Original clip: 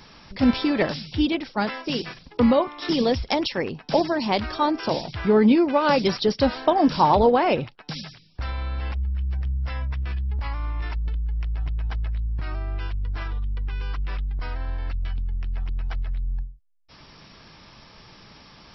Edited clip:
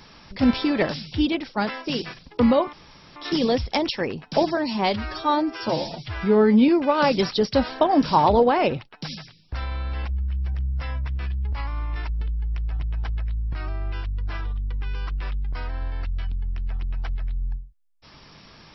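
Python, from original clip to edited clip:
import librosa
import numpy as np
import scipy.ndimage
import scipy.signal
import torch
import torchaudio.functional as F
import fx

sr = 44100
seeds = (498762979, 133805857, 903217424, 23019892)

y = fx.edit(x, sr, fx.insert_room_tone(at_s=2.73, length_s=0.43),
    fx.stretch_span(start_s=4.14, length_s=1.41, factor=1.5), tone=tone)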